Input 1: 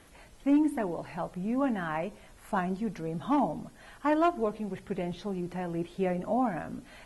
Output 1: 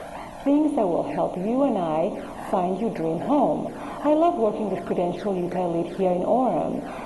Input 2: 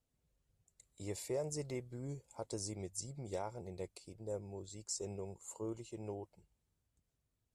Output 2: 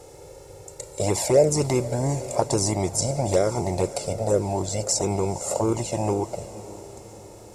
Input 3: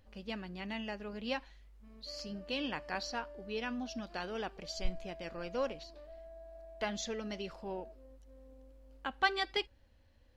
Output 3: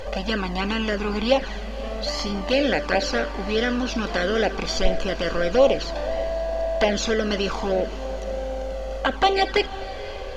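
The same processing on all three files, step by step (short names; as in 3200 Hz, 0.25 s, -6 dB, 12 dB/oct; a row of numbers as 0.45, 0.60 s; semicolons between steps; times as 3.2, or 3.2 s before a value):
per-bin compression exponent 0.6; bell 590 Hz +8.5 dB 1.1 oct; in parallel at -2 dB: compressor 6:1, threshold -32 dBFS; on the sum: envelope flanger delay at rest 2.4 ms, full sweep at -20 dBFS; diffused feedback echo 0.53 s, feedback 55%, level -16 dB; match loudness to -24 LUFS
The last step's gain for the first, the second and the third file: 0.0, +14.0, +9.0 dB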